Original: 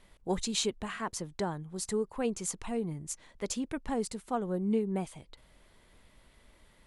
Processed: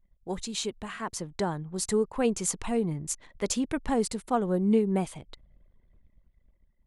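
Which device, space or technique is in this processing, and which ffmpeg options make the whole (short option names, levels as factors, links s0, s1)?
voice memo with heavy noise removal: -af "anlmdn=0.000251,dynaudnorm=f=280:g=9:m=2.66,volume=0.75"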